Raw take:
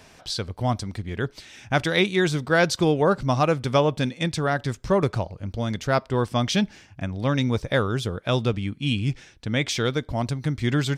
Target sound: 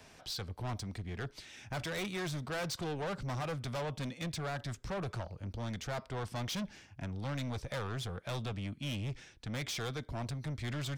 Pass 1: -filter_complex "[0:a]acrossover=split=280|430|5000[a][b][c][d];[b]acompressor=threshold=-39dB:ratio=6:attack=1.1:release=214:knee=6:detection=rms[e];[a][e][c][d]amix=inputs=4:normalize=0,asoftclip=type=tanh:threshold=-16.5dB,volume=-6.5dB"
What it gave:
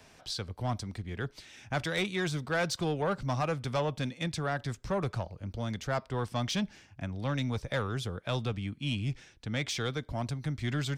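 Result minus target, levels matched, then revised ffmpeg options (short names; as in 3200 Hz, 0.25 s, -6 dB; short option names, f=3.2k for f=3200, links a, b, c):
soft clip: distortion -9 dB
-filter_complex "[0:a]acrossover=split=280|430|5000[a][b][c][d];[b]acompressor=threshold=-39dB:ratio=6:attack=1.1:release=214:knee=6:detection=rms[e];[a][e][c][d]amix=inputs=4:normalize=0,asoftclip=type=tanh:threshold=-28dB,volume=-6.5dB"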